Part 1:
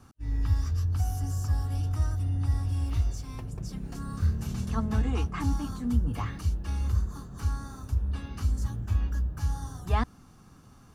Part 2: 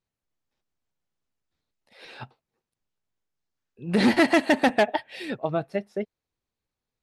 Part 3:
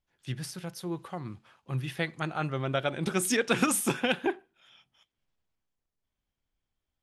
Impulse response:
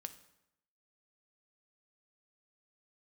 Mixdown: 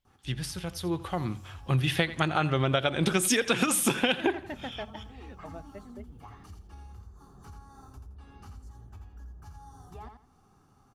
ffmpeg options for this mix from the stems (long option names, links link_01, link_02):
-filter_complex "[0:a]acompressor=threshold=-35dB:ratio=4,equalizer=frequency=400:width_type=o:width=0.33:gain=8,equalizer=frequency=800:width_type=o:width=0.33:gain=11,equalizer=frequency=1250:width_type=o:width=0.33:gain=5,adelay=50,volume=-11dB,asplit=2[link_01][link_02];[link_02]volume=-6.5dB[link_03];[1:a]lowpass=3500,volume=-18.5dB[link_04];[2:a]equalizer=frequency=3300:width_type=o:width=0.77:gain=5,dynaudnorm=framelen=250:gausssize=11:maxgain=12dB,volume=1.5dB,asplit=2[link_05][link_06];[link_06]volume=-18dB[link_07];[link_03][link_07]amix=inputs=2:normalize=0,aecho=0:1:84|168|252|336:1|0.25|0.0625|0.0156[link_08];[link_01][link_04][link_05][link_08]amix=inputs=4:normalize=0,acompressor=threshold=-21dB:ratio=16"